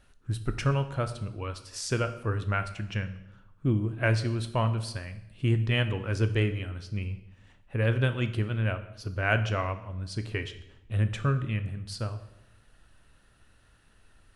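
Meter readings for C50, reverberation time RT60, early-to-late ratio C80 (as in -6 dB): 12.5 dB, 0.85 s, 14.5 dB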